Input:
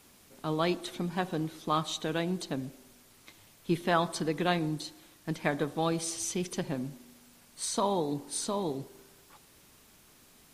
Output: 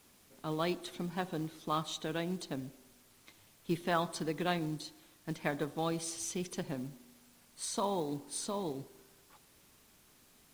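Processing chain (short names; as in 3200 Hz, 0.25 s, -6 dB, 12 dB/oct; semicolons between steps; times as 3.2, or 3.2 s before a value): companded quantiser 6-bit; gain -5 dB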